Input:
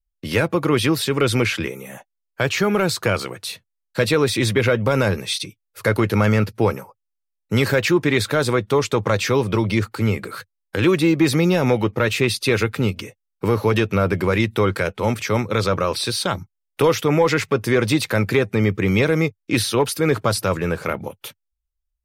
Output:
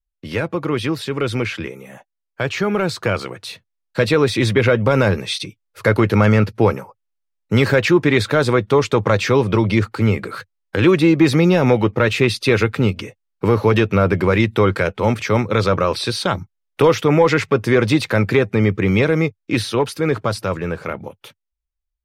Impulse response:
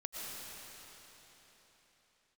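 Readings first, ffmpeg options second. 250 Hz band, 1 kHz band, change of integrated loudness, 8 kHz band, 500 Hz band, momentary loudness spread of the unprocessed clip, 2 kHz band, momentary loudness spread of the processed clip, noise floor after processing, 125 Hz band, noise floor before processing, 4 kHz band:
+3.0 dB, +2.5 dB, +2.5 dB, -4.5 dB, +3.0 dB, 11 LU, +1.5 dB, 11 LU, -79 dBFS, +3.0 dB, -78 dBFS, -0.5 dB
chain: -af "highshelf=f=4700:g=-5,dynaudnorm=f=510:g=13:m=3.76,highshelf=f=10000:g=-10,volume=0.75"

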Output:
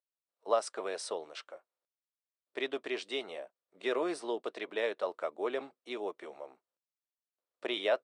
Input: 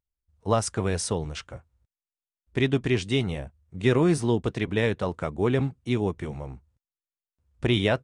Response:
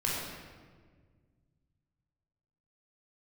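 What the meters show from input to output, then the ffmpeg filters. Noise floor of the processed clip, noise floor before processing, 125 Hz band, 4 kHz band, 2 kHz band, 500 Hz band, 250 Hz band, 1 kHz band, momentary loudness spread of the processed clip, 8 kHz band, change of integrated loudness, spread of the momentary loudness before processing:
under -85 dBFS, under -85 dBFS, under -40 dB, -7.5 dB, -8.0 dB, -7.0 dB, -16.5 dB, -6.0 dB, 15 LU, -12.5 dB, -10.0 dB, 14 LU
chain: -af "highpass=f=370:w=0.5412,highpass=f=370:w=1.3066,equalizer=f=610:t=q:w=4:g=8,equalizer=f=1200:t=q:w=4:g=4,equalizer=f=4100:t=q:w=4:g=4,equalizer=f=6600:t=q:w=4:g=-7,lowpass=f=8900:w=0.5412,lowpass=f=8900:w=1.3066,volume=0.376"

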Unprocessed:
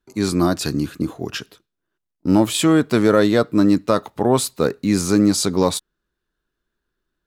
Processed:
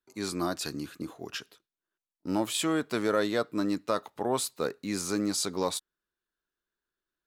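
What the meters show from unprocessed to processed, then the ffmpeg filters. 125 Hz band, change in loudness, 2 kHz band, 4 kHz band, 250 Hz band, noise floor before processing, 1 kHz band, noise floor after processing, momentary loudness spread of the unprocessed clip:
-17.5 dB, -12.5 dB, -9.0 dB, -8.5 dB, -14.5 dB, -80 dBFS, -9.5 dB, under -85 dBFS, 11 LU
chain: -af "lowshelf=f=280:g=-12,volume=0.376"

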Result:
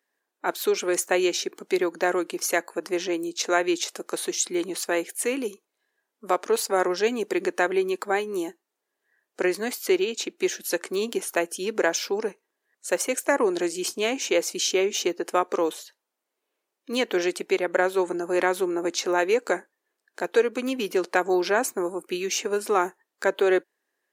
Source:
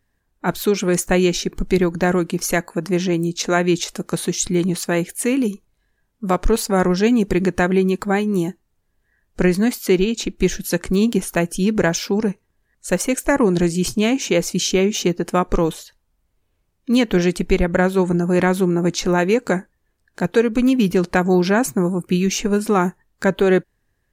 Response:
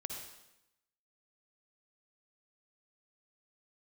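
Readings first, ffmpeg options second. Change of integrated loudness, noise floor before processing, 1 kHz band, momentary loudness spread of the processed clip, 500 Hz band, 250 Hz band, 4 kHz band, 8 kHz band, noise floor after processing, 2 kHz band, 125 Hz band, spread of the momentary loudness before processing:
-6.5 dB, -69 dBFS, -3.5 dB, 7 LU, -4.5 dB, -11.0 dB, -3.5 dB, -3.5 dB, -83 dBFS, -3.5 dB, -25.5 dB, 6 LU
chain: -af "highpass=f=340:w=0.5412,highpass=f=340:w=1.3066,volume=0.668"

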